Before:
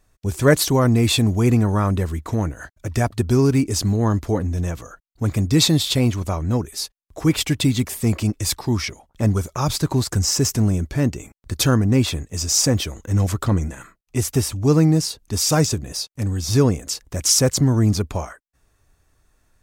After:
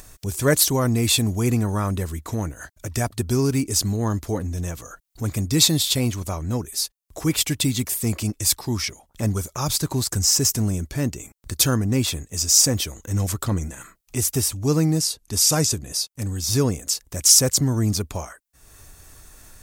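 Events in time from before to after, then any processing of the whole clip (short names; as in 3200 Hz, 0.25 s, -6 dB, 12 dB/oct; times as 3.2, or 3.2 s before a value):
15–16.05 brick-wall FIR low-pass 14000 Hz
whole clip: high shelf 4900 Hz +12 dB; upward compressor, threshold -25 dBFS; gain -4.5 dB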